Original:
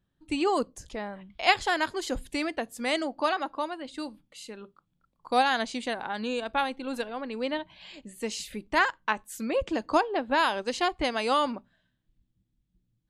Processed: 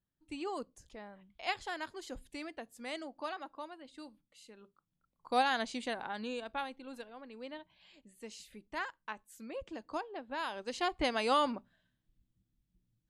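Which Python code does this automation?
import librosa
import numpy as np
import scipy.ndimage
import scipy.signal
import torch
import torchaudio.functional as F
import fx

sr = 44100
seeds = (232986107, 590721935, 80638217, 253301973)

y = fx.gain(x, sr, db=fx.line((4.56, -13.5), (5.37, -6.0), (6.0, -6.0), (7.07, -15.0), (10.34, -15.0), (11.02, -4.0)))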